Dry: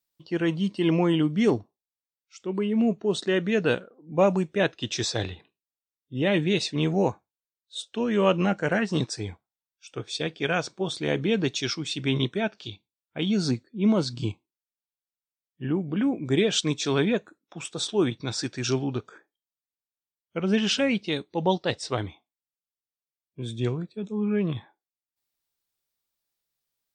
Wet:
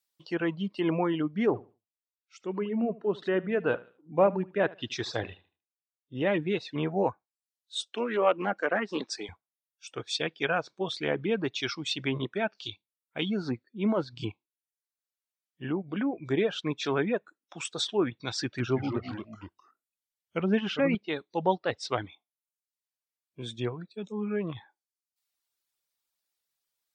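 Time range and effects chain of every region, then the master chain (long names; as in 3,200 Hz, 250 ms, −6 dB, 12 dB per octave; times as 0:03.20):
0:01.46–0:06.21: low-pass filter 2,300 Hz 6 dB per octave + repeating echo 75 ms, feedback 22%, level −10 dB
0:07.84–0:09.29: high-pass filter 220 Hz 24 dB per octave + highs frequency-modulated by the lows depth 0.11 ms
0:18.42–0:20.95: low-shelf EQ 200 Hz +8 dB + delay with pitch and tempo change per echo 167 ms, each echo −2 semitones, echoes 2, each echo −6 dB
whole clip: treble cut that deepens with the level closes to 1,700 Hz, closed at −21.5 dBFS; reverb reduction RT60 0.67 s; low-shelf EQ 380 Hz −10 dB; level +2 dB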